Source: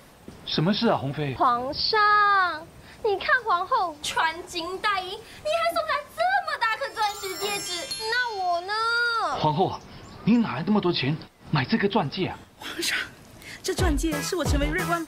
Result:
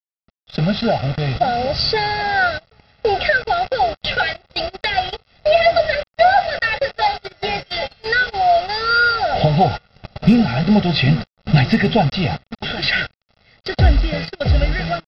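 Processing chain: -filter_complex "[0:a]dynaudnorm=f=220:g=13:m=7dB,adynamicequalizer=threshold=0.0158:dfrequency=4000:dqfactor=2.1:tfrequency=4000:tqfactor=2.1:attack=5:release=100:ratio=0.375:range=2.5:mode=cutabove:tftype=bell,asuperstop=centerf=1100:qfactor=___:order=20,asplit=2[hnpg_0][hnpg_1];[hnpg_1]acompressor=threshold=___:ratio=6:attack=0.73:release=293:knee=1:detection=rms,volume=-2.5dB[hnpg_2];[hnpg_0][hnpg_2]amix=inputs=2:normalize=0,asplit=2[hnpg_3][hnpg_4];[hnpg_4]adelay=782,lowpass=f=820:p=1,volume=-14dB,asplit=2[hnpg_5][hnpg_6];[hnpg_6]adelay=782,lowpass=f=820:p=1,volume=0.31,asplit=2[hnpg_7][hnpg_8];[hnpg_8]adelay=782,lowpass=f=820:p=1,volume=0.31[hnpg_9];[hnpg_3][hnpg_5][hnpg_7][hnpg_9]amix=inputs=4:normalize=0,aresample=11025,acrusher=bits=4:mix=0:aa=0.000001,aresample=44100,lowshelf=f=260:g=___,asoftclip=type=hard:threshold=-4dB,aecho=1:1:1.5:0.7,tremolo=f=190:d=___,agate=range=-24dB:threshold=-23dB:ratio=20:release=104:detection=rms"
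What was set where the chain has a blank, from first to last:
2.1, -29dB, 5.5, 0.182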